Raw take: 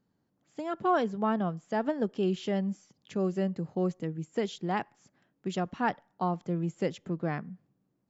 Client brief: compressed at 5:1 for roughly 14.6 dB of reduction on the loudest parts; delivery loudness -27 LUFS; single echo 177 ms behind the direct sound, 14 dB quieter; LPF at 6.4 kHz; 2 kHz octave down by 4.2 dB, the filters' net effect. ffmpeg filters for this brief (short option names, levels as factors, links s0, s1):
-af "lowpass=6400,equalizer=f=2000:t=o:g=-5.5,acompressor=threshold=0.00891:ratio=5,aecho=1:1:177:0.2,volume=7.94"